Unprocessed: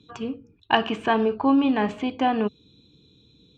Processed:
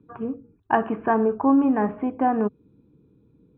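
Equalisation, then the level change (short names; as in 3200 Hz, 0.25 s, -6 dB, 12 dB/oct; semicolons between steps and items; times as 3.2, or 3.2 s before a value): LPF 1700 Hz 24 dB/oct; air absorption 310 m; bell 74 Hz -5 dB 1.2 oct; +2.0 dB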